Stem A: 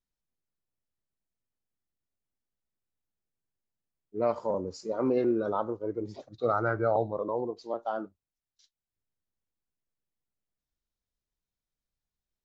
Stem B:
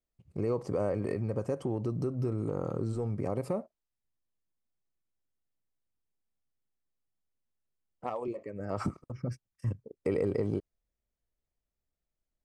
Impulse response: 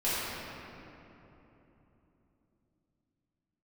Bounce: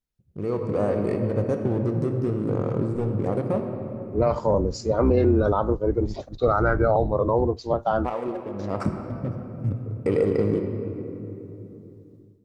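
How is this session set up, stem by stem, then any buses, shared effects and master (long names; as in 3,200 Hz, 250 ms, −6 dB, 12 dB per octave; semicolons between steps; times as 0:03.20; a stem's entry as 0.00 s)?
−1.0 dB, 0.00 s, no send, sub-octave generator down 2 octaves, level +1 dB
−5.5 dB, 0.00 s, send −13 dB, adaptive Wiener filter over 41 samples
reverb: on, RT60 3.3 s, pre-delay 4 ms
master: automatic gain control gain up to 11 dB; brickwall limiter −11 dBFS, peak gain reduction 6 dB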